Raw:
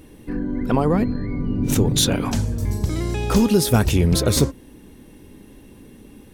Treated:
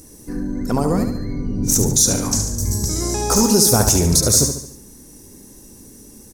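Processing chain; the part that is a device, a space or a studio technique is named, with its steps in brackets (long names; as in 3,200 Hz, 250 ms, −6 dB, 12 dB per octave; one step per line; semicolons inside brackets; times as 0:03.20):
0:03.02–0:04.12: parametric band 850 Hz +8 dB 1.5 octaves
over-bright horn tweeter (high shelf with overshoot 4,300 Hz +12.5 dB, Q 3; brickwall limiter −3 dBFS, peak gain reduction 11.5 dB)
repeating echo 72 ms, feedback 47%, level −7.5 dB
level −1 dB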